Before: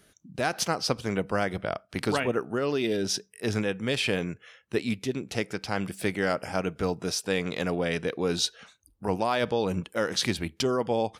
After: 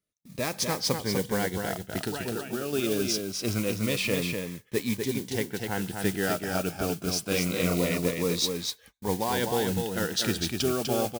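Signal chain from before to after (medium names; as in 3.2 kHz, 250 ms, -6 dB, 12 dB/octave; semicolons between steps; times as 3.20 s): 2.00–2.73 s: compression, threshold -28 dBFS, peak gain reduction 7 dB; 5.38–5.78 s: steep low-pass 3.7 kHz; 7.28–7.86 s: doubling 34 ms -2.5 dB; delay 248 ms -5 dB; modulation noise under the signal 12 dB; gate -49 dBFS, range -26 dB; Shepard-style phaser falling 0.25 Hz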